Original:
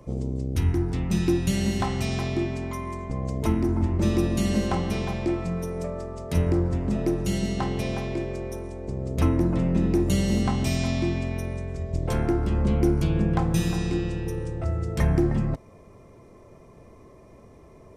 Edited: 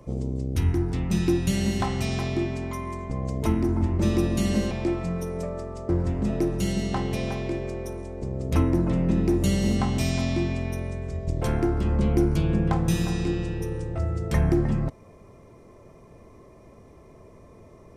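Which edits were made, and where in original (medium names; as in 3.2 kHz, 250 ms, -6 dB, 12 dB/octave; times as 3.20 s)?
4.71–5.12 s: delete
6.30–6.55 s: delete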